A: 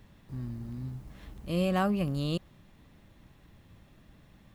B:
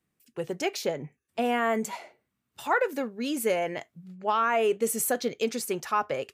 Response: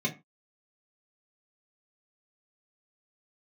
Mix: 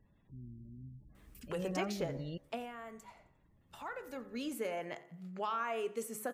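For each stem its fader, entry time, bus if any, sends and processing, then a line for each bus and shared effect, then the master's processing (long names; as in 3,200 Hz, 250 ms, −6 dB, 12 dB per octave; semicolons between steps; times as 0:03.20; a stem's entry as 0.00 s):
−12.0 dB, 0.00 s, no send, no echo send, gate on every frequency bin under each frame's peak −25 dB strong
0:02.47 −10.5 dB → 0:02.71 −22 dB → 0:03.71 −22 dB → 0:04.42 −12.5 dB, 1.15 s, no send, echo send −20 dB, parametric band 1,200 Hz +4.5 dB 0.56 octaves; hum removal 70.92 Hz, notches 28; multiband upward and downward compressor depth 70%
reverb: not used
echo: repeating echo 88 ms, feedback 47%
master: no processing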